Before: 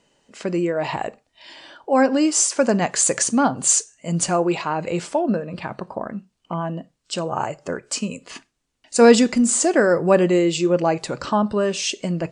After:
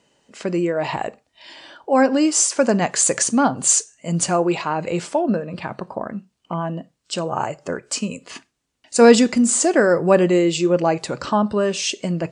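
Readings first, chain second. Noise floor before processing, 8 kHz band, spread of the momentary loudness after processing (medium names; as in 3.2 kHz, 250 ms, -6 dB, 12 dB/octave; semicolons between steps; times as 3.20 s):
-73 dBFS, +1.0 dB, 15 LU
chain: high-pass 50 Hz; trim +1 dB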